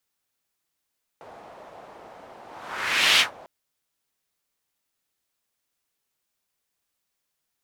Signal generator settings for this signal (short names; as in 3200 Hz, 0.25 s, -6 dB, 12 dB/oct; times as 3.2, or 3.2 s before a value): whoosh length 2.25 s, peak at 1.98, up 0.81 s, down 0.14 s, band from 710 Hz, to 3000 Hz, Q 1.9, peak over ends 28 dB